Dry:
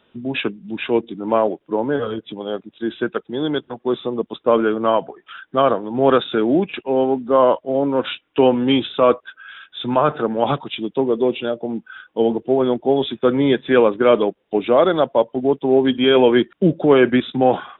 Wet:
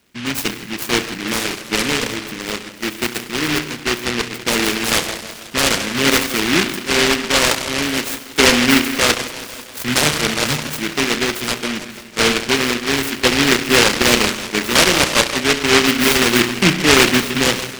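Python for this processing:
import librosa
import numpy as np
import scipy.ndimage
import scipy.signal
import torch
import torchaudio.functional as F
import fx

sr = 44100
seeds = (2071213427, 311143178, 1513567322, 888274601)

p1 = fx.rattle_buzz(x, sr, strikes_db=-25.0, level_db=-23.0)
p2 = fx.filter_lfo_notch(p1, sr, shape='saw_down', hz=0.61, low_hz=570.0, high_hz=1700.0, q=0.91)
p3 = p2 + fx.echo_wet_lowpass(p2, sr, ms=164, feedback_pct=62, hz=1500.0, wet_db=-13.5, dry=0)
p4 = fx.rev_spring(p3, sr, rt60_s=1.1, pass_ms=(33,), chirp_ms=50, drr_db=7.5)
p5 = fx.noise_mod_delay(p4, sr, seeds[0], noise_hz=2100.0, depth_ms=0.42)
y = p5 * 10.0 ** (1.5 / 20.0)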